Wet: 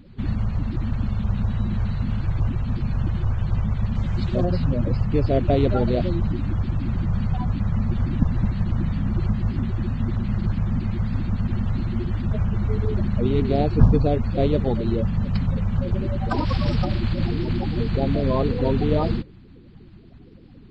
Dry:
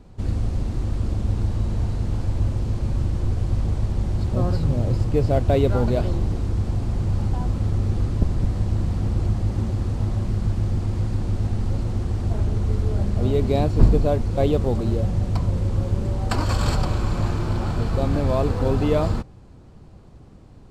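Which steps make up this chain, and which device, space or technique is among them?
clip after many re-uploads (LPF 4600 Hz 24 dB/oct; bin magnitudes rounded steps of 30 dB); 3.95–4.45 high shelf 3000 Hz +8.5 dB

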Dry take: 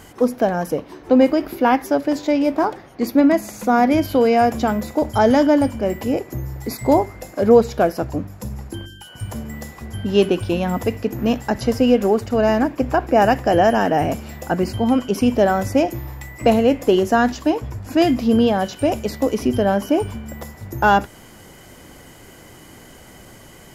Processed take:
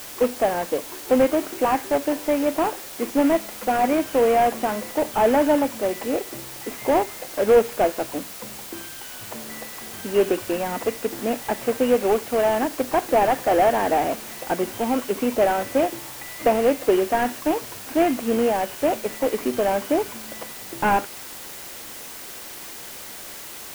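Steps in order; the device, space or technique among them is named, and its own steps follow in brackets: army field radio (BPF 350–3000 Hz; CVSD 16 kbps; white noise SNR 15 dB)

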